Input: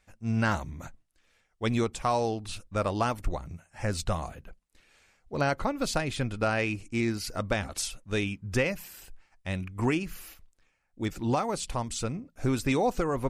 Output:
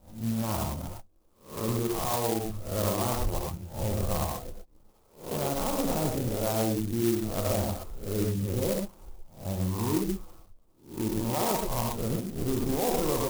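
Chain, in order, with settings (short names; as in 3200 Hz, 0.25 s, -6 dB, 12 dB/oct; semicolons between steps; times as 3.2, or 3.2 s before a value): spectral swells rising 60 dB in 0.40 s; steep low-pass 1200 Hz 48 dB/oct; limiter -24.5 dBFS, peak gain reduction 11 dB; non-linear reverb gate 0.14 s rising, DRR -0.5 dB; clock jitter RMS 0.12 ms; gain +2 dB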